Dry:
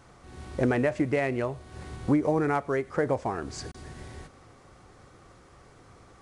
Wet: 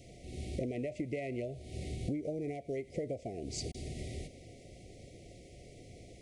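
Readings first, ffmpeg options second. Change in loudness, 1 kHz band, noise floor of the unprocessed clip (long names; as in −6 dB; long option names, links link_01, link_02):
−12.0 dB, −18.5 dB, −55 dBFS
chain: -af "acompressor=threshold=-36dB:ratio=8,asuperstop=centerf=1200:order=20:qfactor=0.93,volume=2dB"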